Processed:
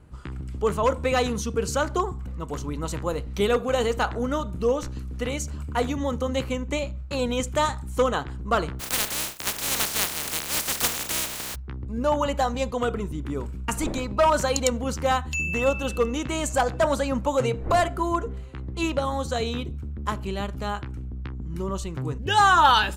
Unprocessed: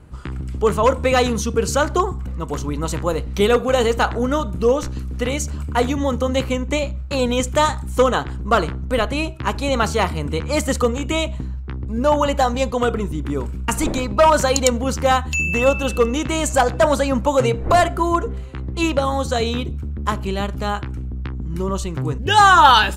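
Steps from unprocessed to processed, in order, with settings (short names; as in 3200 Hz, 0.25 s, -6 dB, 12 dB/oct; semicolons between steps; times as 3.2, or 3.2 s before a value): 8.79–11.54 spectral contrast lowered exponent 0.11; gain -6.5 dB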